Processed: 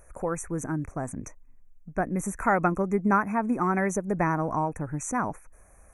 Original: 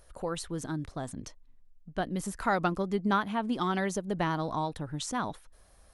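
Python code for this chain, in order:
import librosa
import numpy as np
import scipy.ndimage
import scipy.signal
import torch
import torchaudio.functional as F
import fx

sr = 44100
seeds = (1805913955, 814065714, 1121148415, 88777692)

y = fx.brickwall_bandstop(x, sr, low_hz=2600.0, high_hz=5700.0)
y = y * 10.0 ** (4.5 / 20.0)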